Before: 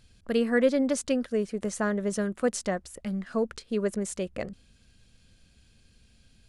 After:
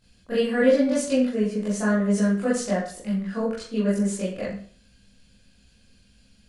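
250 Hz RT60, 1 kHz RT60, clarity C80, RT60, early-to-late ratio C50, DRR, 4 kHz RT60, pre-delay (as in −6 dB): 0.45 s, 0.50 s, 7.5 dB, 0.50 s, 3.5 dB, −10.0 dB, 0.45 s, 21 ms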